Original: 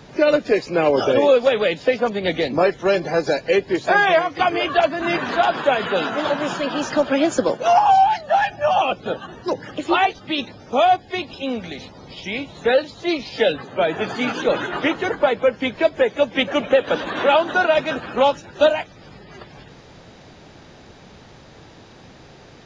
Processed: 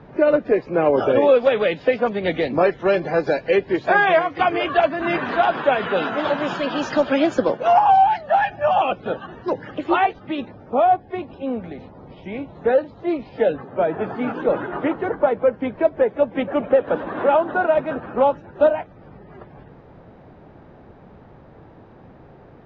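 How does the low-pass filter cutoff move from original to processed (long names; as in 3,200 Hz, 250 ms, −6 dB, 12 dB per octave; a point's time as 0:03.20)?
0:00.78 1,500 Hz
0:01.40 2,700 Hz
0:05.91 2,700 Hz
0:07.01 5,000 Hz
0:07.62 2,400 Hz
0:09.73 2,400 Hz
0:10.76 1,200 Hz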